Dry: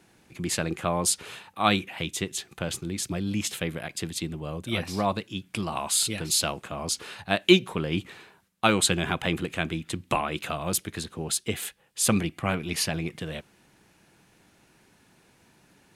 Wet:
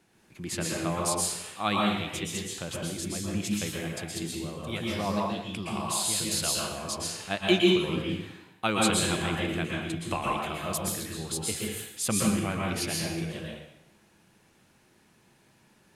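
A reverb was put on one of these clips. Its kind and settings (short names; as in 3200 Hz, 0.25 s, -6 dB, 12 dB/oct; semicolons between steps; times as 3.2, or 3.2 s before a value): plate-style reverb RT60 0.84 s, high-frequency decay 0.95×, pre-delay 0.105 s, DRR -2.5 dB; gain -6.5 dB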